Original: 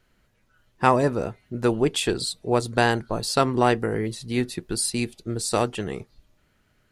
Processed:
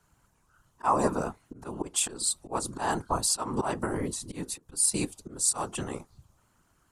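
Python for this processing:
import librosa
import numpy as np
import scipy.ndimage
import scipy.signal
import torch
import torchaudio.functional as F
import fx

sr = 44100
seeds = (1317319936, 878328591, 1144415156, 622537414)

y = fx.auto_swell(x, sr, attack_ms=222.0)
y = fx.graphic_eq(y, sr, hz=(125, 500, 1000, 2000, 4000, 8000), db=(-9, -8, 10, -9, -6, 9))
y = fx.whisperise(y, sr, seeds[0])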